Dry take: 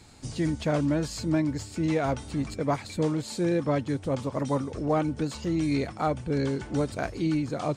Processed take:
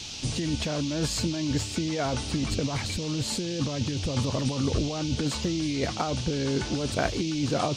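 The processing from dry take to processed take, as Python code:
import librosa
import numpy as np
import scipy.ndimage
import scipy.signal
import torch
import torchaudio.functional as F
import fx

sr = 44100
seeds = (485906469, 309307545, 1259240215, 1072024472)

y = fx.low_shelf(x, sr, hz=150.0, db=8.5, at=(2.51, 5.16))
y = fx.over_compress(y, sr, threshold_db=-30.0, ratio=-1.0)
y = fx.dmg_noise_band(y, sr, seeds[0], low_hz=2500.0, high_hz=6300.0, level_db=-42.0)
y = y * 10.0 ** (2.5 / 20.0)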